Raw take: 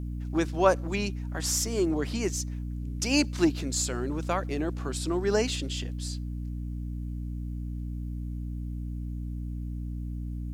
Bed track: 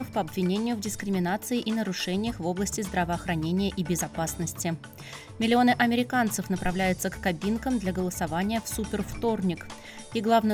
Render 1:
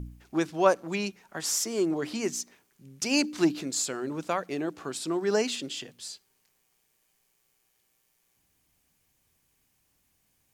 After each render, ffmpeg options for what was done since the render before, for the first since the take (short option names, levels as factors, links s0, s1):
-af "bandreject=f=60:t=h:w=4,bandreject=f=120:t=h:w=4,bandreject=f=180:t=h:w=4,bandreject=f=240:t=h:w=4,bandreject=f=300:t=h:w=4"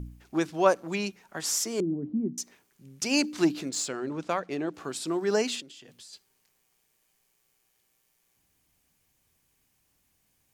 -filter_complex "[0:a]asettb=1/sr,asplit=3[s0][s1][s2];[s0]atrim=end=1.804[s3];[s1]atrim=start=1.8:end=2.38,asetpts=PTS-STARTPTS,afade=t=in:d=0.004:c=qsin,afade=t=out:st=0.576:d=0.004:c=qsin,lowpass=f=230:t=q:w=2[s4];[s2]atrim=start=2.376[s5];[s3][s4]acrossfade=d=0.004:c1=hsin:c2=qsin[s6];[s6][s5]acrossfade=d=0.004:c1=qsin:c2=hsin,asettb=1/sr,asplit=3[s7][s8][s9];[s7]atrim=end=3.694[s10];[s8]atrim=start=3.69:end=4.74,asetpts=PTS-STARTPTS,afade=t=in:d=0.004:c=qsin,afade=t=out:st=1.046:d=0.004:c=qsin,adynamicsmooth=sensitivity=8:basefreq=6000[s11];[s9]atrim=start=4.736[s12];[s10][s11]acrossfade=d=0.004:c1=hsin:c2=qsin[s13];[s13][s12]acrossfade=d=0.004:c1=qsin:c2=hsin,asplit=3[s14][s15][s16];[s14]afade=t=out:st=5.6:d=0.02[s17];[s15]acompressor=threshold=0.00562:ratio=16:attack=3.2:release=140:knee=1:detection=peak,afade=t=in:st=5.6:d=0.02,afade=t=out:st=6.12:d=0.02[s18];[s16]afade=t=in:st=6.12:d=0.02[s19];[s17][s18][s19]amix=inputs=3:normalize=0"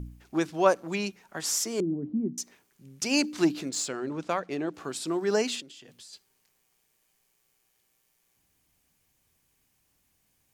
-af anull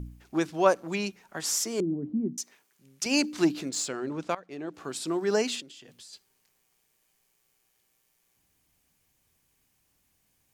-filter_complex "[0:a]asettb=1/sr,asplit=3[s0][s1][s2];[s0]atrim=end=2.374[s3];[s1]atrim=start=2.37:end=3.06,asetpts=PTS-STARTPTS,afade=t=in:d=0.004:c=qsin,afade=t=out:st=0.686:d=0.004:c=qsin,lowshelf=f=340:g=-12[s4];[s2]atrim=start=3.056[s5];[s3][s4]acrossfade=d=0.004:c1=hsin:c2=qsin[s6];[s6][s5]acrossfade=d=0.004:c1=qsin:c2=hsin,asplit=2[s7][s8];[s7]atrim=end=4.35,asetpts=PTS-STARTPTS,afade=t=out:st=4.346:d=0.004:c=hsin:silence=0.133352[s9];[s8]atrim=start=4.35,asetpts=PTS-STARTPTS,afade=t=in:d=0.62:silence=0.133352[s10];[s9][s10]concat=n=2:v=0:a=1"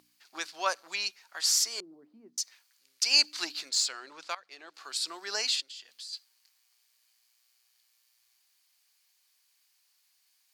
-af "highpass=1200,equalizer=f=4500:w=2.7:g=11"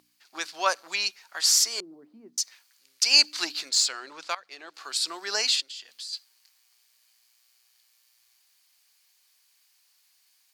-af "dynaudnorm=f=250:g=3:m=1.78"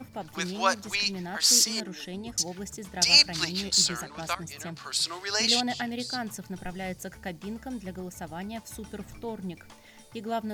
-filter_complex "[1:a]volume=0.335[s0];[0:a][s0]amix=inputs=2:normalize=0"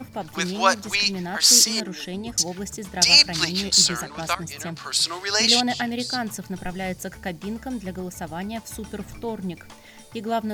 -af "volume=2,alimiter=limit=0.794:level=0:latency=1"